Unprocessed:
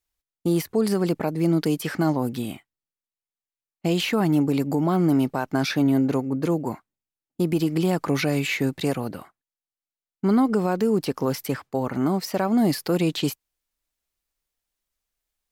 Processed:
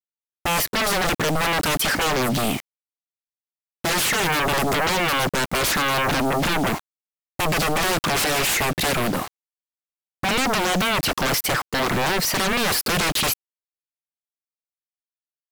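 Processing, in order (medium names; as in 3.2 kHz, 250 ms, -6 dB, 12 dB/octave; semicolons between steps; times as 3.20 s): bit crusher 8-bit; sine folder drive 18 dB, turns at -12.5 dBFS; trim -5.5 dB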